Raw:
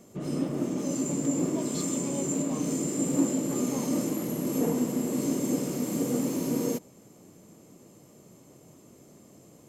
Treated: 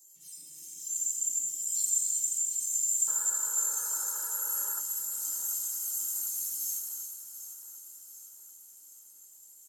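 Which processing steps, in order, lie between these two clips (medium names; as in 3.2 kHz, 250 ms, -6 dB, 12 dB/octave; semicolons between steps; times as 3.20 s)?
random holes in the spectrogram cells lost 22%; high-pass 140 Hz 24 dB/octave; band noise 230–870 Hz -44 dBFS; FFT filter 210 Hz 0 dB, 450 Hz -24 dB, 930 Hz -26 dB, 7.2 kHz +6 dB; gated-style reverb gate 420 ms flat, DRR 1.5 dB; painted sound noise, 3.07–4.81 s, 280–1700 Hz -32 dBFS; differentiator; comb 2.2 ms, depth 96%; small resonant body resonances 1.9/3.1 kHz, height 8 dB; bit-crushed delay 743 ms, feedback 55%, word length 11-bit, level -11.5 dB; trim -3.5 dB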